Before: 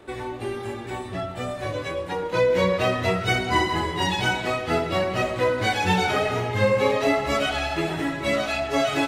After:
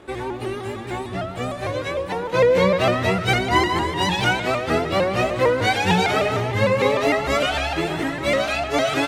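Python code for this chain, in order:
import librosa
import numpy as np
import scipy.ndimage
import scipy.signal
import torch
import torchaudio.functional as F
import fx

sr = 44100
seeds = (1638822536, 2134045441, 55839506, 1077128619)

y = fx.doubler(x, sr, ms=16.0, db=-13.0)
y = fx.vibrato_shape(y, sr, shape='saw_up', rate_hz=6.6, depth_cents=100.0)
y = F.gain(torch.from_numpy(y), 2.5).numpy()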